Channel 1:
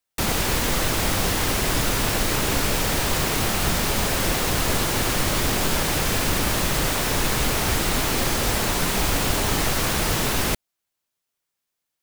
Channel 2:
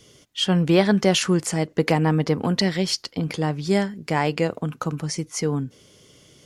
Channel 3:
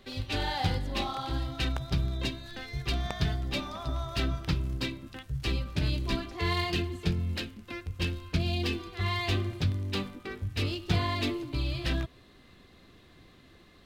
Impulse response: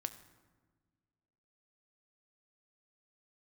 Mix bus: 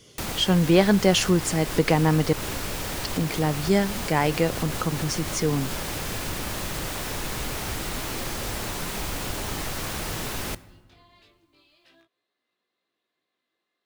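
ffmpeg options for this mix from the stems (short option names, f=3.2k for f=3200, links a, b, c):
-filter_complex "[0:a]volume=-4.5dB,asplit=2[a][b];[b]volume=-8.5dB[c];[1:a]volume=-0.5dB,asplit=3[d][e][f];[d]atrim=end=2.33,asetpts=PTS-STARTPTS,afade=t=out:st=2.326:d=0.004:c=hsin[g];[e]atrim=start=2.33:end=3,asetpts=PTS-STARTPTS,volume=0[h];[f]atrim=start=3,asetpts=PTS-STARTPTS,afade=t=in:d=0.004:c=hsin[i];[g][h][i]concat=n=3:v=0:a=1,asplit=2[j][k];[2:a]highpass=430,alimiter=level_in=2dB:limit=-24dB:level=0:latency=1:release=63,volume=-2dB,flanger=delay=16.5:depth=6.5:speed=0.32,volume=-18.5dB[l];[k]apad=whole_len=530219[m];[a][m]sidechaincompress=threshold=-33dB:ratio=8:attack=16:release=106[n];[n][l]amix=inputs=2:normalize=0,acompressor=threshold=-41dB:ratio=2,volume=0dB[o];[3:a]atrim=start_sample=2205[p];[c][p]afir=irnorm=-1:irlink=0[q];[j][o][q]amix=inputs=3:normalize=0"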